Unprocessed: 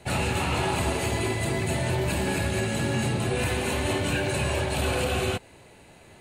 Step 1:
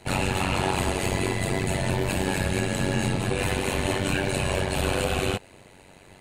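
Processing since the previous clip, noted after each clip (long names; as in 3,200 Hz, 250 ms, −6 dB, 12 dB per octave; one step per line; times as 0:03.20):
amplitude modulation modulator 94 Hz, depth 75%
level +4.5 dB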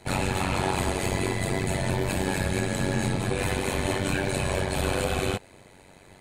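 notch filter 2,800 Hz, Q 9.4
level −1 dB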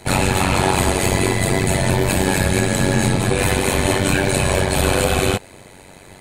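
high-shelf EQ 7,600 Hz +5.5 dB
level +9 dB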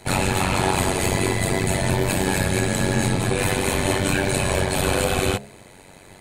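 hum removal 69.39 Hz, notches 10
level −3.5 dB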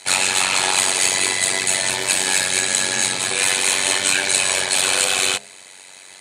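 meter weighting curve ITU-R 468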